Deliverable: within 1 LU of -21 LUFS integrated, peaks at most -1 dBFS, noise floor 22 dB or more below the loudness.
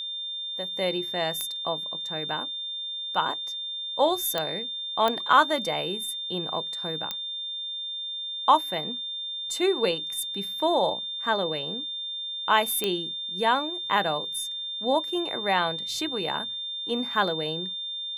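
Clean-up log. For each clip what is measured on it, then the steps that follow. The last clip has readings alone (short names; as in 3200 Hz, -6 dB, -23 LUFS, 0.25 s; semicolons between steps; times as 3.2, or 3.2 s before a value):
clicks 5; steady tone 3600 Hz; tone level -31 dBFS; loudness -27.0 LUFS; peak -5.5 dBFS; loudness target -21.0 LUFS
-> de-click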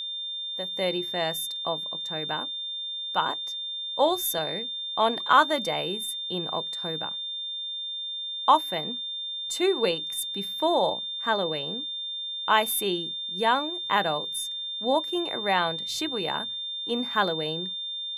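clicks 0; steady tone 3600 Hz; tone level -31 dBFS
-> notch 3600 Hz, Q 30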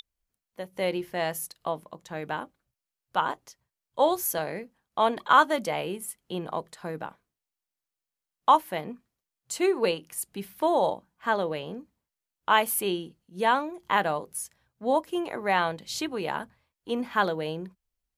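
steady tone none; loudness -28.0 LUFS; peak -6.0 dBFS; loudness target -21.0 LUFS
-> gain +7 dB; limiter -1 dBFS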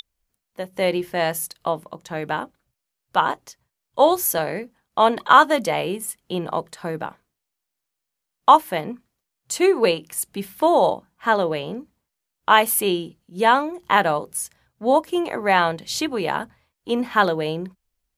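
loudness -21.0 LUFS; peak -1.0 dBFS; noise floor -82 dBFS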